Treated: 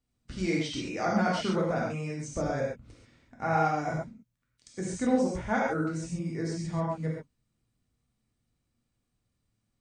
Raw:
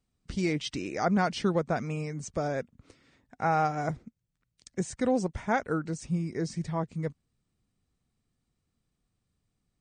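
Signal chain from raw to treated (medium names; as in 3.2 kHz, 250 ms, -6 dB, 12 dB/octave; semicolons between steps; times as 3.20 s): 2.33–3.44 s: bass shelf 140 Hz +9 dB; gated-style reverb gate 160 ms flat, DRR -4 dB; trim -5 dB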